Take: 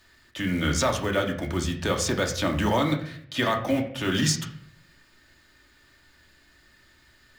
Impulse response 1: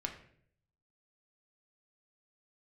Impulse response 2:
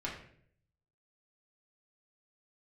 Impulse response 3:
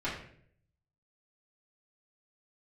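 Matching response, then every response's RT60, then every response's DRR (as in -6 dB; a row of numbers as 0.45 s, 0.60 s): 1; 0.60 s, 0.60 s, 0.60 s; 1.5 dB, -6.0 dB, -11.5 dB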